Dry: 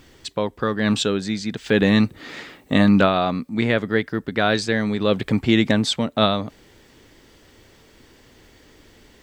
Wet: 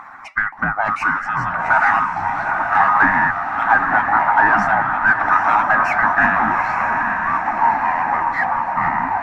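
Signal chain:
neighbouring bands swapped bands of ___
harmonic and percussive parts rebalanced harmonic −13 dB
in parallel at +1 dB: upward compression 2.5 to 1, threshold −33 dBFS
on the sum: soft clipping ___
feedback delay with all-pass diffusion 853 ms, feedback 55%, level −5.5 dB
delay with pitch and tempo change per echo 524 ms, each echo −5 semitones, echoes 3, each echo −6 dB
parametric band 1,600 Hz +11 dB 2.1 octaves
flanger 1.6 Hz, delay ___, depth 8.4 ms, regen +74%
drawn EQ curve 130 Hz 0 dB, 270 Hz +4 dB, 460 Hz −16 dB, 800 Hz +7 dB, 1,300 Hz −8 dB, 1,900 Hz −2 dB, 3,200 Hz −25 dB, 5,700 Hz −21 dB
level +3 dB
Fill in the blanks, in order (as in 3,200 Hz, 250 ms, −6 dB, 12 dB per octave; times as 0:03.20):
1,000 Hz, −12.5 dBFS, 3.4 ms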